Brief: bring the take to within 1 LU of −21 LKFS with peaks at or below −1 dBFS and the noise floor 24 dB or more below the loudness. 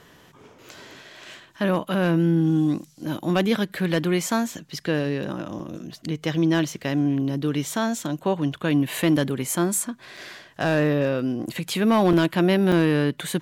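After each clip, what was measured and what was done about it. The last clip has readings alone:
share of clipped samples 0.3%; peaks flattened at −12.0 dBFS; number of dropouts 4; longest dropout 4.1 ms; integrated loudness −23.0 LKFS; sample peak −12.0 dBFS; target loudness −21.0 LKFS
→ clipped peaks rebuilt −12 dBFS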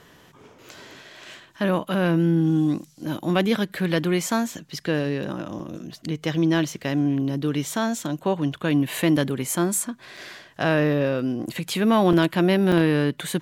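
share of clipped samples 0.0%; number of dropouts 4; longest dropout 4.1 ms
→ repair the gap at 0:05.59/0:10.17/0:12.13/0:12.72, 4.1 ms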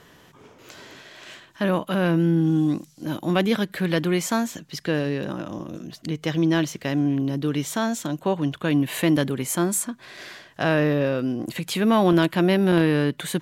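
number of dropouts 0; integrated loudness −23.0 LKFS; sample peak −5.0 dBFS; target loudness −21.0 LKFS
→ level +2 dB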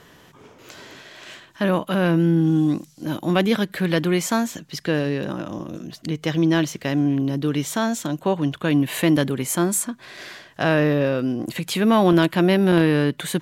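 integrated loudness −21.0 LKFS; sample peak −3.0 dBFS; background noise floor −51 dBFS

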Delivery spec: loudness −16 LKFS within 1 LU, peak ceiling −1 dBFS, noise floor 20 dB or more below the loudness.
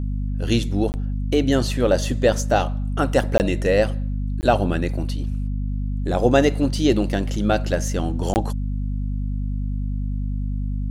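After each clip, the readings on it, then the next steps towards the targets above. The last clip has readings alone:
number of dropouts 4; longest dropout 19 ms; mains hum 50 Hz; hum harmonics up to 250 Hz; level of the hum −22 dBFS; integrated loudness −22.5 LKFS; sample peak −3.5 dBFS; target loudness −16.0 LKFS
→ repair the gap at 0:00.92/0:03.38/0:04.41/0:08.34, 19 ms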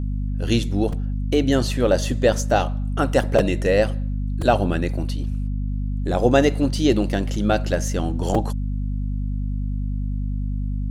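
number of dropouts 0; mains hum 50 Hz; hum harmonics up to 250 Hz; level of the hum −22 dBFS
→ mains-hum notches 50/100/150/200/250 Hz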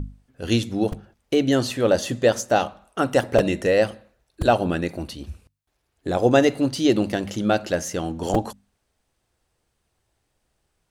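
mains hum none found; integrated loudness −22.0 LKFS; sample peak −4.5 dBFS; target loudness −16.0 LKFS
→ level +6 dB
brickwall limiter −1 dBFS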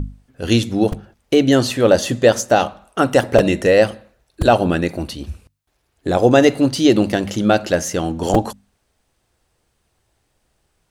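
integrated loudness −16.5 LKFS; sample peak −1.0 dBFS; background noise floor −68 dBFS

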